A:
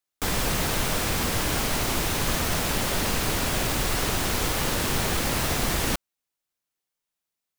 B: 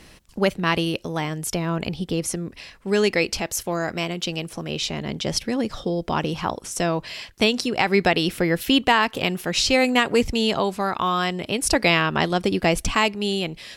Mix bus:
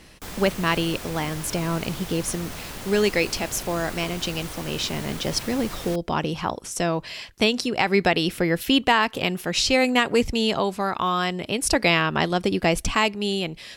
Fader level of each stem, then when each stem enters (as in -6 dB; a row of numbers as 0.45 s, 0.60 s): -10.5 dB, -1.0 dB; 0.00 s, 0.00 s